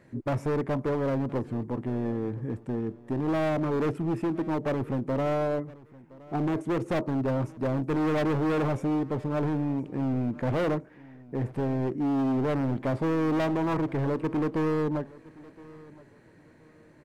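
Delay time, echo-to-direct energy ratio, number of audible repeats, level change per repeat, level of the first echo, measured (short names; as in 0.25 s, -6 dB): 1.018 s, -21.0 dB, 2, -11.5 dB, -21.5 dB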